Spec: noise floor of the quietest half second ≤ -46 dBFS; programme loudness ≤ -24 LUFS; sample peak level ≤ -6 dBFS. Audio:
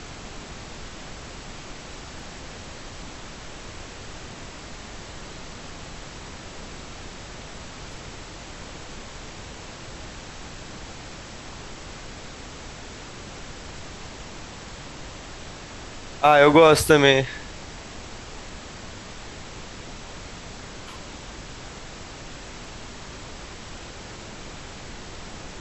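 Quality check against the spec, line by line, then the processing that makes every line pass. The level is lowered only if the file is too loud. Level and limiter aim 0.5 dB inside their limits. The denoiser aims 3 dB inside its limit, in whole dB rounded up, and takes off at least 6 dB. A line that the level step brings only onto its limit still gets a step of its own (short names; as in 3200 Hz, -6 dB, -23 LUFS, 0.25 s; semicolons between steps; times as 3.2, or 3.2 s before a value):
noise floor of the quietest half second -39 dBFS: fail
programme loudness -16.5 LUFS: fail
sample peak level -3.5 dBFS: fail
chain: gain -8 dB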